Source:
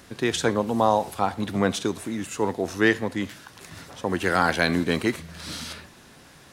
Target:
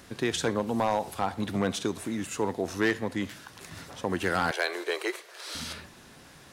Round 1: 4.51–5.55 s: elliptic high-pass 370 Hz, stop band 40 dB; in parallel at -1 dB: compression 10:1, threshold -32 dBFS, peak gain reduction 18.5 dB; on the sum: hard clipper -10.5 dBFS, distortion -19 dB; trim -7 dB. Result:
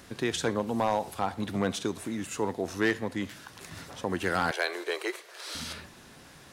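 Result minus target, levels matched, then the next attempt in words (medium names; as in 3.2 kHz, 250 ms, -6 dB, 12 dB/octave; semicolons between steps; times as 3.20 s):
compression: peak gain reduction +5.5 dB
4.51–5.55 s: elliptic high-pass 370 Hz, stop band 40 dB; in parallel at -1 dB: compression 10:1, threshold -26 dBFS, peak gain reduction 13 dB; on the sum: hard clipper -10.5 dBFS, distortion -17 dB; trim -7 dB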